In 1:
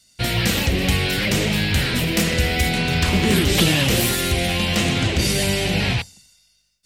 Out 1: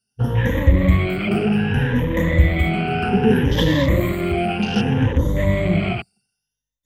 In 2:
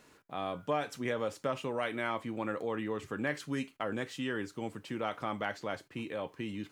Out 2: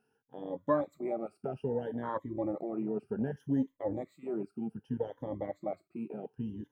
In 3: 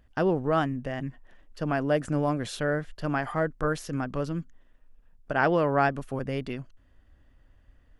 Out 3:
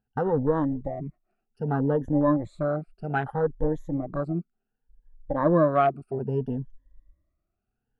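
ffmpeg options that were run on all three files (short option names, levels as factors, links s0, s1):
-af "afftfilt=real='re*pow(10,21/40*sin(2*PI*(1.1*log(max(b,1)*sr/1024/100)/log(2)-(0.64)*(pts-256)/sr)))':imag='im*pow(10,21/40*sin(2*PI*(1.1*log(max(b,1)*sr/1024/100)/log(2)-(0.64)*(pts-256)/sr)))':win_size=1024:overlap=0.75,equalizer=f=4900:t=o:w=2.8:g=-11,afwtdn=0.0447,volume=0.891"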